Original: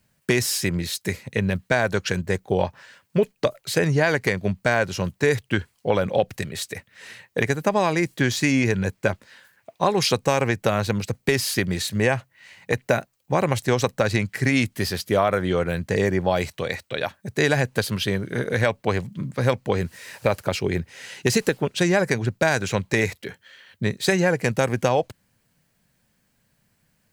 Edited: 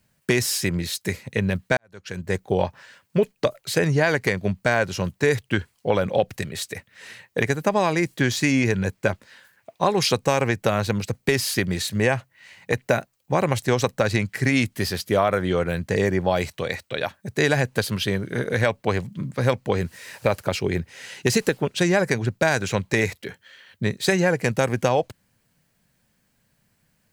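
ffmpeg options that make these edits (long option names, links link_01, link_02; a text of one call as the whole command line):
ffmpeg -i in.wav -filter_complex "[0:a]asplit=2[link_01][link_02];[link_01]atrim=end=1.77,asetpts=PTS-STARTPTS,afade=type=out:start_time=1.766:duration=0.004:curve=hsin[link_03];[link_02]atrim=start=1.77,asetpts=PTS-STARTPTS,afade=type=in:duration=0.58:curve=qua[link_04];[link_03][link_04]concat=n=2:v=0:a=1" out.wav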